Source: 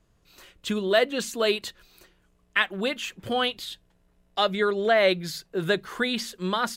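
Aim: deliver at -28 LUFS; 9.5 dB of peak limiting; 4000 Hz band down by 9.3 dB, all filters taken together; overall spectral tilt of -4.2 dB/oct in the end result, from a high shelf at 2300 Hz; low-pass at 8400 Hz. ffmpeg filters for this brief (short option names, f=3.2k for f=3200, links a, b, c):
-af "lowpass=8.4k,highshelf=f=2.3k:g=-7.5,equalizer=f=4k:t=o:g=-5.5,volume=3dB,alimiter=limit=-16.5dB:level=0:latency=1"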